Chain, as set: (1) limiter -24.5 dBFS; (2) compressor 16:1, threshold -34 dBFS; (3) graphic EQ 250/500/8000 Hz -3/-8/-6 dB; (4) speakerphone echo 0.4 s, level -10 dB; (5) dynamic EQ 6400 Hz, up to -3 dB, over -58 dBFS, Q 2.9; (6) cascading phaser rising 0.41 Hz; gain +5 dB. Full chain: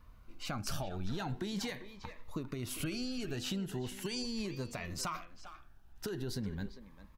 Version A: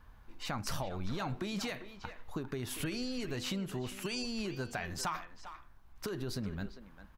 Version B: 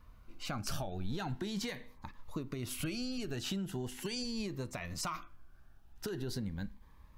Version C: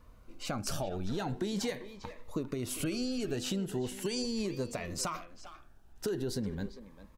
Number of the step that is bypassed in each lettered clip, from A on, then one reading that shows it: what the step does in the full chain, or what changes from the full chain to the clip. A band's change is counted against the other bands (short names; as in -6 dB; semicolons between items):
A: 6, 2 kHz band +3.0 dB; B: 4, momentary loudness spread change -2 LU; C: 3, 500 Hz band +5.0 dB